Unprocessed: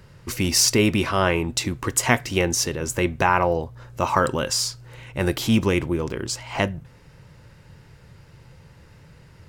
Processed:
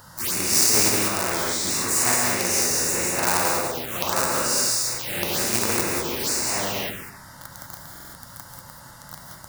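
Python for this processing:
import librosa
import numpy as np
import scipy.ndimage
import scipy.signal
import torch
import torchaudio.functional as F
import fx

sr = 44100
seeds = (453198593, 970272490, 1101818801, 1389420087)

p1 = fx.phase_scramble(x, sr, seeds[0], window_ms=200)
p2 = fx.quant_companded(p1, sr, bits=2)
p3 = p1 + (p2 * 10.0 ** (-11.0 / 20.0))
p4 = fx.riaa(p3, sr, side='recording')
p5 = p4 + fx.echo_feedback(p4, sr, ms=148, feedback_pct=45, wet_db=-23.0, dry=0)
p6 = fx.rev_gated(p5, sr, seeds[1], gate_ms=220, shape='rising', drr_db=1.0)
p7 = fx.level_steps(p6, sr, step_db=20, at=(1.08, 1.67))
p8 = fx.env_phaser(p7, sr, low_hz=400.0, high_hz=3200.0, full_db=-15.5)
p9 = fx.high_shelf(p8, sr, hz=2000.0, db=-9.5)
p10 = fx.buffer_glitch(p9, sr, at_s=(7.91,), block=2048, repeats=4)
y = fx.spectral_comp(p10, sr, ratio=2.0)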